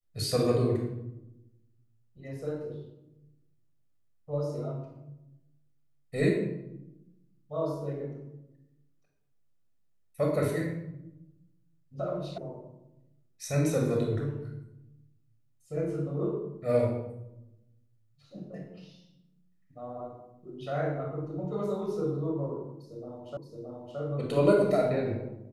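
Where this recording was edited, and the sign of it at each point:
12.38 s: sound stops dead
23.37 s: repeat of the last 0.62 s

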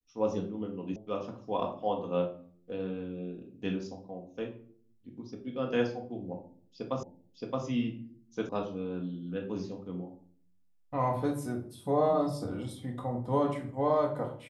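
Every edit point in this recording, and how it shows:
0.96 s: sound stops dead
7.03 s: repeat of the last 0.62 s
8.49 s: sound stops dead

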